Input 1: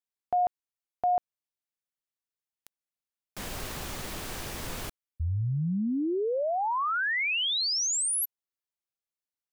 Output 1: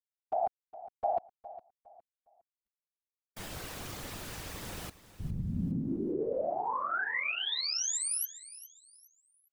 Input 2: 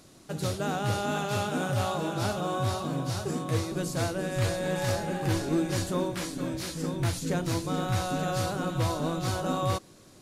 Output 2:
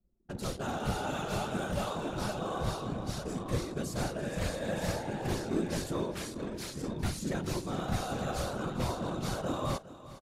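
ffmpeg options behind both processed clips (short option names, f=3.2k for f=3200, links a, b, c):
-af "afftfilt=real='hypot(re,im)*cos(2*PI*random(0))':imag='hypot(re,im)*sin(2*PI*random(1))':win_size=512:overlap=0.75,anlmdn=0.0158,aecho=1:1:410|820|1230:0.158|0.0475|0.0143,volume=1dB"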